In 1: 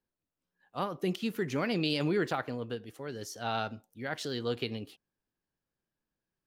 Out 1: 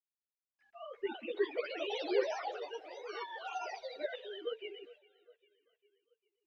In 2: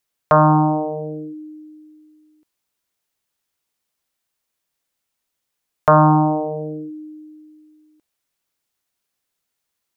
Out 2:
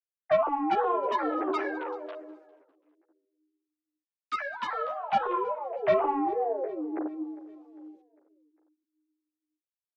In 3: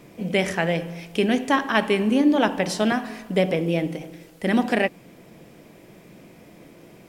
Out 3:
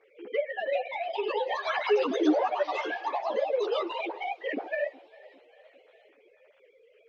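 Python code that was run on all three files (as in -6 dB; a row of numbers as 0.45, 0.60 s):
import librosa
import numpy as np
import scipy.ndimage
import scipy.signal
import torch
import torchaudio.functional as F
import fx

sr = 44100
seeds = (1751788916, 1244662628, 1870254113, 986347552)

p1 = fx.sine_speech(x, sr)
p2 = fx.env_lowpass_down(p1, sr, base_hz=1100.0, full_db=-18.0)
p3 = scipy.signal.sosfilt(scipy.signal.butter(2, 570.0, 'highpass', fs=sr, output='sos'), p2)
p4 = fx.peak_eq(p3, sr, hz=1100.0, db=-11.5, octaves=0.97)
p5 = fx.level_steps(p4, sr, step_db=18)
p6 = p4 + (p5 * librosa.db_to_amplitude(2.0))
p7 = 10.0 ** (-14.0 / 20.0) * np.tanh(p6 / 10.0 ** (-14.0 / 20.0))
p8 = fx.quant_dither(p7, sr, seeds[0], bits=12, dither='none')
p9 = fx.air_absorb(p8, sr, metres=140.0)
p10 = p9 + fx.echo_feedback(p9, sr, ms=402, feedback_pct=55, wet_db=-23, dry=0)
p11 = fx.echo_pitch(p10, sr, ms=461, semitones=4, count=3, db_per_echo=-3.0)
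y = fx.ensemble(p11, sr)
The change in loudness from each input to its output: -5.0, -12.5, -7.0 LU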